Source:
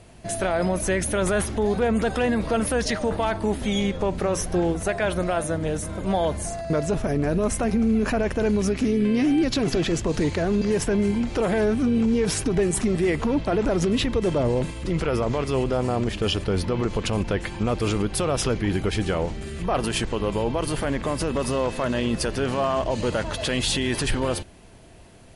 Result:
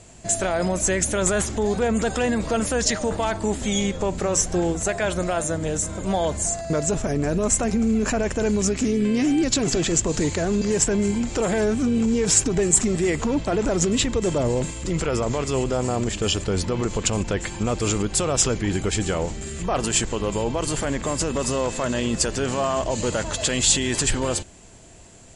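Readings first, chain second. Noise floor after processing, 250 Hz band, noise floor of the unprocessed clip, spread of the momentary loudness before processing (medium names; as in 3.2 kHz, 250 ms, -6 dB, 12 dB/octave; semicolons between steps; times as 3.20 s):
-34 dBFS, 0.0 dB, -35 dBFS, 5 LU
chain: resonant low-pass 7.4 kHz, resonance Q 8.2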